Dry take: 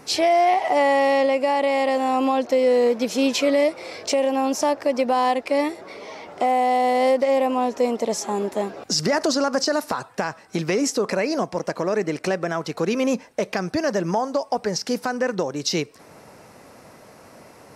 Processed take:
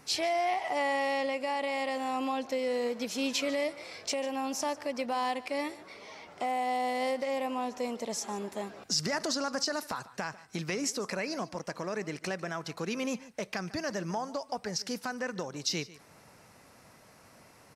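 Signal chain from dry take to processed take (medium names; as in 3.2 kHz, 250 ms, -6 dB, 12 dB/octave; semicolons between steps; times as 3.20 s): peaking EQ 440 Hz -7.5 dB 2.3 oct; on a send: delay 147 ms -18.5 dB; on the sum: trim -6.5 dB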